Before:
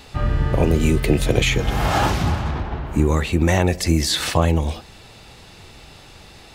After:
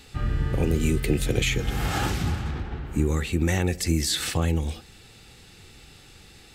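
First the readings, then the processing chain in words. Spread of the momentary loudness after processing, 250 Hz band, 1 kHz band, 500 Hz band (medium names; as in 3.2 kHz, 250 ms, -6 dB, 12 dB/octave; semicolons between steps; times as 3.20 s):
7 LU, -6.0 dB, -10.5 dB, -8.0 dB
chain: graphic EQ with 31 bands 630 Hz -11 dB, 1 kHz -10 dB, 8 kHz +5 dB, 12.5 kHz +5 dB; trim -5.5 dB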